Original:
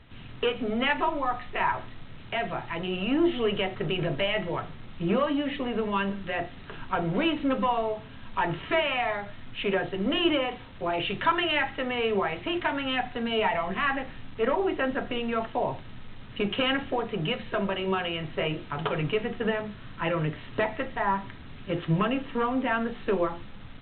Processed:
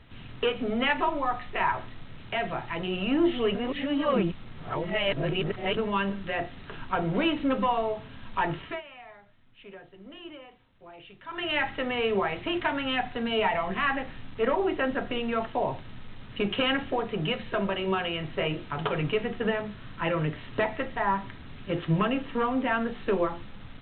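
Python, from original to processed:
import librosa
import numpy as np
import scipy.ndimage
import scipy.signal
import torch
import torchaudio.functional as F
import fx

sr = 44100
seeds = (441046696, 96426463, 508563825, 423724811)

y = fx.edit(x, sr, fx.reverse_span(start_s=3.55, length_s=2.22),
    fx.fade_down_up(start_s=8.37, length_s=3.36, db=-19.5, fade_s=0.45, curve='qsin'), tone=tone)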